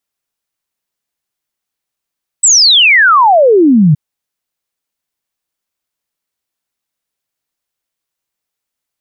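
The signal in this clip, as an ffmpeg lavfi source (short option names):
-f lavfi -i "aevalsrc='0.668*clip(min(t,1.52-t)/0.01,0,1)*sin(2*PI*8200*1.52/log(140/8200)*(exp(log(140/8200)*t/1.52)-1))':d=1.52:s=44100"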